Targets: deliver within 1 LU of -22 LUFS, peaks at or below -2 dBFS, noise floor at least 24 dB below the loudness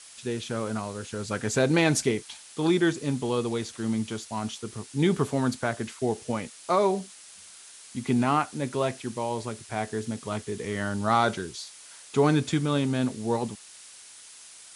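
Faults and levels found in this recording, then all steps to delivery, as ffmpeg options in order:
noise floor -49 dBFS; noise floor target -52 dBFS; loudness -28.0 LUFS; peak -9.0 dBFS; loudness target -22.0 LUFS
-> -af "afftdn=nr=6:nf=-49"
-af "volume=6dB"

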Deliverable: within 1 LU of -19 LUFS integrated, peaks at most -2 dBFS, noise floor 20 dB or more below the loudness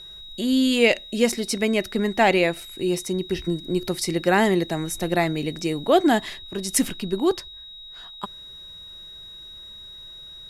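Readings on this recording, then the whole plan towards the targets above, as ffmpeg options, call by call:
steady tone 3800 Hz; tone level -39 dBFS; loudness -22.5 LUFS; peak -4.5 dBFS; loudness target -19.0 LUFS
-> -af "bandreject=f=3.8k:w=30"
-af "volume=3.5dB,alimiter=limit=-2dB:level=0:latency=1"

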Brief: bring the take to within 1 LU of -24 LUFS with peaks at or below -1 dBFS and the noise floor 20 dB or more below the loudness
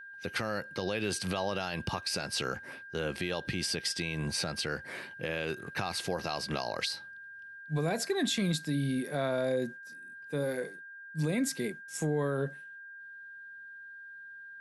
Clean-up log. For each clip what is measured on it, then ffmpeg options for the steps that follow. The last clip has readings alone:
steady tone 1600 Hz; tone level -45 dBFS; loudness -33.5 LUFS; peak -19.5 dBFS; loudness target -24.0 LUFS
-> -af "bandreject=f=1.6k:w=30"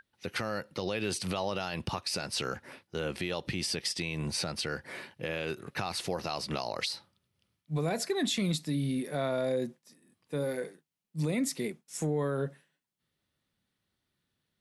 steady tone none; loudness -33.5 LUFS; peak -19.5 dBFS; loudness target -24.0 LUFS
-> -af "volume=9.5dB"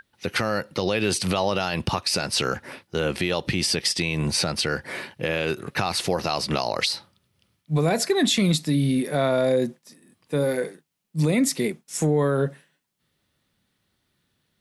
loudness -24.0 LUFS; peak -10.0 dBFS; noise floor -74 dBFS

